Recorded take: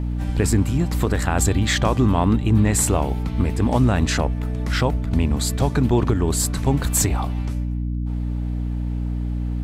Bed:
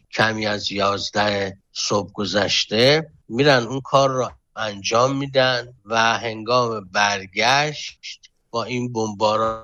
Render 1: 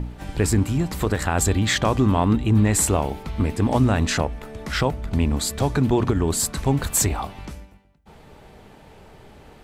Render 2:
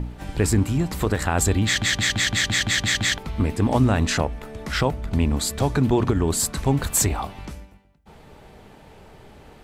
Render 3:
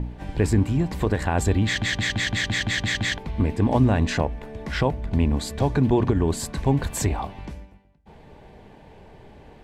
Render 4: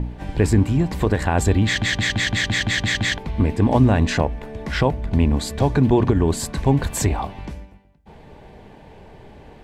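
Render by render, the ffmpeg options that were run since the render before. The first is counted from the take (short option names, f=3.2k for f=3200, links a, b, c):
-af "bandreject=f=60:t=h:w=4,bandreject=f=120:t=h:w=4,bandreject=f=180:t=h:w=4,bandreject=f=240:t=h:w=4,bandreject=f=300:t=h:w=4"
-filter_complex "[0:a]asplit=10[a][b][c][d][e][f][g][h][i][j];[a]atrim=end=1.822[k];[b]atrim=start=1.648:end=1.822[l];[c]atrim=start=1.648:end=1.822[m];[d]atrim=start=1.648:end=1.822[n];[e]atrim=start=1.648:end=1.822[o];[f]atrim=start=1.648:end=1.822[p];[g]atrim=start=1.648:end=1.822[q];[h]atrim=start=1.648:end=1.822[r];[i]atrim=start=1.648:end=1.822[s];[j]atrim=start=3.178[t];[k][l]acrossfade=d=0.004:c1=hsin:c2=hsin[u];[u][m]acrossfade=d=0.004:c1=hsin:c2=hsin[v];[v][n]acrossfade=d=0.004:c1=hsin:c2=hsin[w];[w][o]acrossfade=d=0.004:c1=hsin:c2=hsin[x];[x][p]acrossfade=d=0.004:c1=hsin:c2=hsin[y];[y][q]acrossfade=d=0.004:c1=hsin:c2=hsin[z];[z][r]acrossfade=d=0.004:c1=hsin:c2=hsin[aa];[aa][s]acrossfade=d=0.004:c1=hsin:c2=hsin[ab];[ab][t]acrossfade=d=0.004:c1=hsin:c2=hsin"
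-af "lowpass=f=2.5k:p=1,bandreject=f=1.3k:w=5.2"
-af "volume=3.5dB"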